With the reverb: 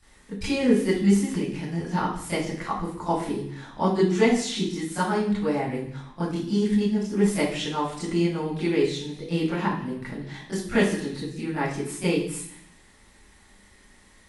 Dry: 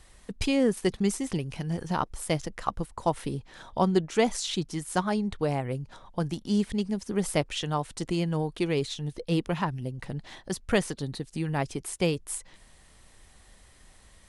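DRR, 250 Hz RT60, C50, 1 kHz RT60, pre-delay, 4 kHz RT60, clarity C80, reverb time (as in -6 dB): -13.0 dB, 0.95 s, 3.0 dB, 0.70 s, 22 ms, 0.85 s, 7.0 dB, 0.65 s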